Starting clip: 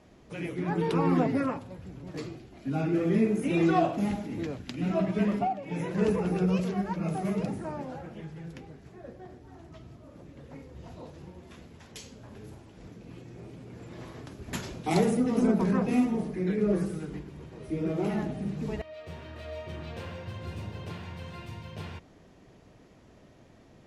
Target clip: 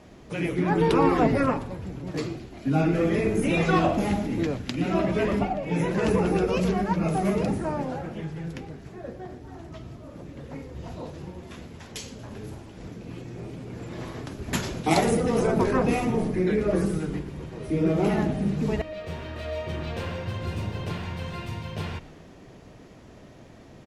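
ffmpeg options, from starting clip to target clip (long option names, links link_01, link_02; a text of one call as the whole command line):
ffmpeg -i in.wav -filter_complex "[0:a]asplit=7[link_01][link_02][link_03][link_04][link_05][link_06][link_07];[link_02]adelay=117,afreqshift=-120,volume=-19.5dB[link_08];[link_03]adelay=234,afreqshift=-240,volume=-23.5dB[link_09];[link_04]adelay=351,afreqshift=-360,volume=-27.5dB[link_10];[link_05]adelay=468,afreqshift=-480,volume=-31.5dB[link_11];[link_06]adelay=585,afreqshift=-600,volume=-35.6dB[link_12];[link_07]adelay=702,afreqshift=-720,volume=-39.6dB[link_13];[link_01][link_08][link_09][link_10][link_11][link_12][link_13]amix=inputs=7:normalize=0,afftfilt=real='re*lt(hypot(re,im),0.447)':imag='im*lt(hypot(re,im),0.447)':win_size=1024:overlap=0.75,volume=7.5dB" out.wav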